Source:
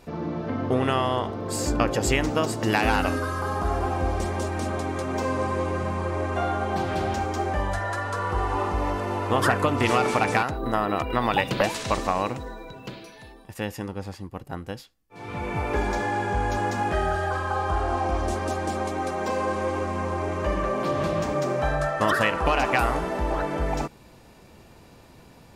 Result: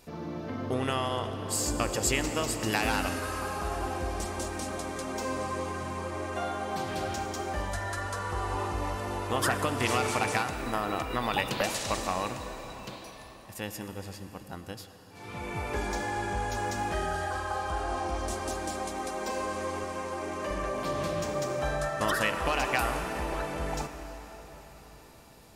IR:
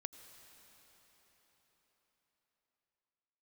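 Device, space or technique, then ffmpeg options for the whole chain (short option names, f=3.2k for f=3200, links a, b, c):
cathedral: -filter_complex "[0:a]asettb=1/sr,asplit=3[a][b][c];[a]atrim=end=19.844[d];[b]atrim=start=19.84:end=20.51,asetpts=PTS-STARTPTS,afade=t=in:d=0.004:c=qsin,afade=t=out:st=0.666:d=0.004:c=qsin,highpass=160[e];[c]atrim=start=20.506[f];[d][e]acrossfade=d=0.004:c1=hsin:c2=qsin[g];[g][f]acrossfade=d=0.004:c1=qsin:c2=hsin,highshelf=f=3.8k:g=11.5[h];[1:a]atrim=start_sample=2205[i];[h][i]afir=irnorm=-1:irlink=0,volume=-3.5dB"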